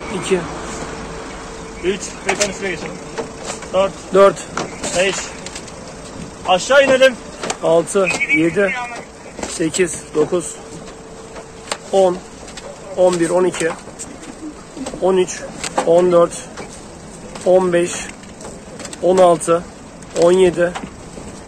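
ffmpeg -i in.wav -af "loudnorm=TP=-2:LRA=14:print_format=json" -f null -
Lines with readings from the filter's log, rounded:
"input_i" : "-16.4",
"input_tp" : "-1.7",
"input_lra" : "5.3",
"input_thresh" : "-28.0",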